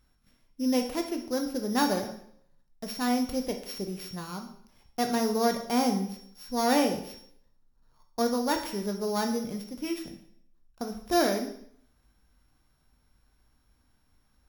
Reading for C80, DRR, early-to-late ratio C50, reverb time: 12.0 dB, 4.0 dB, 8.5 dB, 0.65 s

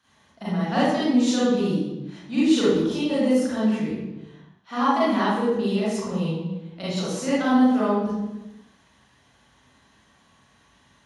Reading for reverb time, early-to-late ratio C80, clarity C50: 1.0 s, 1.0 dB, −4.0 dB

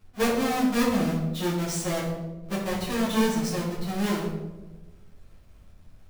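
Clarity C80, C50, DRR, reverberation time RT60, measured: 5.5 dB, 3.0 dB, −7.5 dB, 1.2 s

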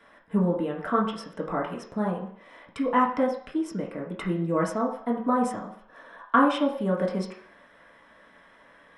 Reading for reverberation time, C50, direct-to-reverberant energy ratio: 0.60 s, 6.5 dB, −3.5 dB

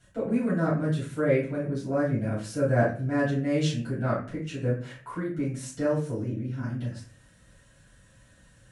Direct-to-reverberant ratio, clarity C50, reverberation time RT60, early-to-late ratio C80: −10.5 dB, 5.5 dB, 0.40 s, 11.0 dB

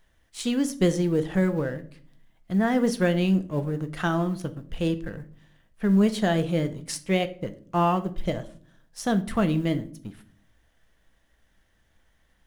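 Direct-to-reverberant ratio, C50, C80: 9.0 dB, 16.5 dB, 20.5 dB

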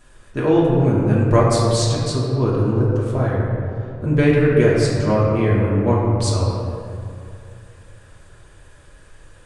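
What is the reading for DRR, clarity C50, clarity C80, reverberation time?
−6.5 dB, −1.0 dB, 0.5 dB, 2.5 s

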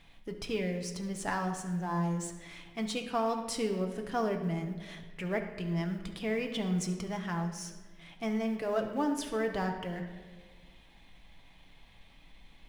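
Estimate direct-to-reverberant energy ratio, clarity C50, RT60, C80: 3.5 dB, 7.5 dB, 1.5 s, 9.5 dB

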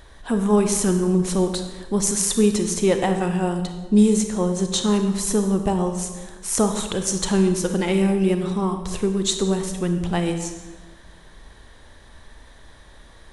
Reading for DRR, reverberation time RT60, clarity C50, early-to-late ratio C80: 6.0 dB, 1.3 s, 7.0 dB, 9.0 dB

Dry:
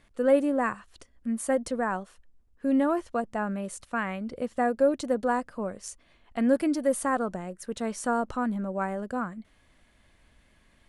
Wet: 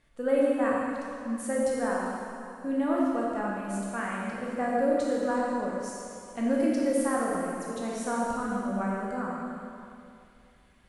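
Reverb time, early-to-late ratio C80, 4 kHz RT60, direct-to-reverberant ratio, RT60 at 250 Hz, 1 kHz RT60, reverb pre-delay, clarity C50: 2.5 s, −0.5 dB, 2.3 s, −4.5 dB, 2.4 s, 2.5 s, 8 ms, −2.0 dB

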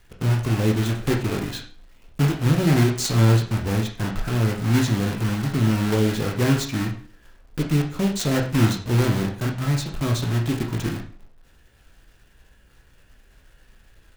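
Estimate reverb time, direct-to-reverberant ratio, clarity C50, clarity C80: 0.40 s, 0.5 dB, 8.5 dB, 12.5 dB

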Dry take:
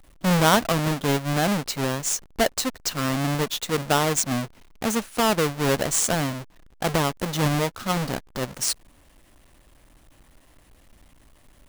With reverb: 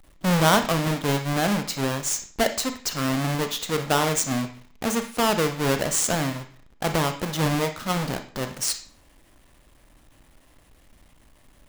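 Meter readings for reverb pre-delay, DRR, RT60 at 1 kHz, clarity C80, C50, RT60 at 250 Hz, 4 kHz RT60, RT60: 29 ms, 7.0 dB, 0.50 s, 14.5 dB, 10.0 dB, 0.50 s, 0.40 s, 0.50 s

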